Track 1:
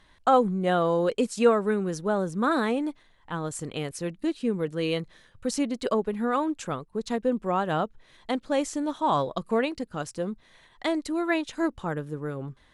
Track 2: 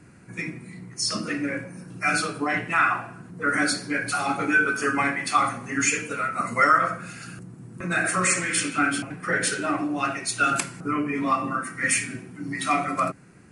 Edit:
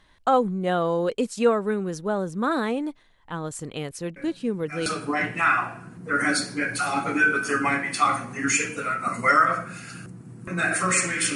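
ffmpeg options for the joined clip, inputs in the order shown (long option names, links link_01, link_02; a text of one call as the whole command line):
ffmpeg -i cue0.wav -i cue1.wav -filter_complex "[1:a]asplit=2[link_01][link_02];[0:a]apad=whole_dur=11.35,atrim=end=11.35,atrim=end=4.862[link_03];[link_02]atrim=start=2.188:end=8.68[link_04];[link_01]atrim=start=1.49:end=2.19,asetpts=PTS-STARTPTS,volume=-14dB,afade=type=in:duration=0.004:curve=hsin,afade=type=out:start_time=0.696:duration=0.004:curve=hsin,adelay=4160[link_05];[link_03][link_04]acrossfade=duration=0.004:curve1=hsin:curve2=hsin[link_06];[link_06][link_05]amix=inputs=2:normalize=0" out.wav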